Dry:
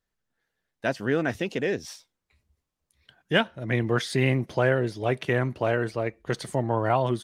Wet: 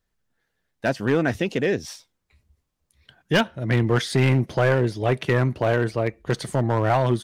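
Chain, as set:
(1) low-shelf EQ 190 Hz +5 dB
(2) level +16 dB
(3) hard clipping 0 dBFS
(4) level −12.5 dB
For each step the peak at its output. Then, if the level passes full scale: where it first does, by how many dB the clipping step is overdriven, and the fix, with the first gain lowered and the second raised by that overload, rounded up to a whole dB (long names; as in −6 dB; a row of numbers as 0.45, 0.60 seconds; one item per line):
−8.0, +8.0, 0.0, −12.5 dBFS
step 2, 8.0 dB
step 2 +8 dB, step 4 −4.5 dB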